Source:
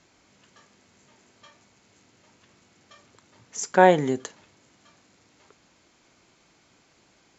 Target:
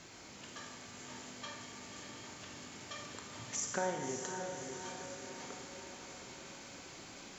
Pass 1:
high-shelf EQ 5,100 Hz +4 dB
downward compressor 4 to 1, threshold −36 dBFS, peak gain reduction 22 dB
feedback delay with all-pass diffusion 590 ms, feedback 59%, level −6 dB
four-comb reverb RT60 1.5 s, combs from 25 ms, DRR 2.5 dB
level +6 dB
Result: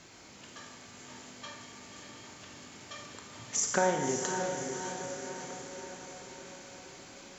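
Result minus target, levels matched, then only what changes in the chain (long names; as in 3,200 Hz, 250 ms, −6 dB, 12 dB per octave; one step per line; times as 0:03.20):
downward compressor: peak gain reduction −8 dB
change: downward compressor 4 to 1, threshold −47 dBFS, peak gain reduction 30 dB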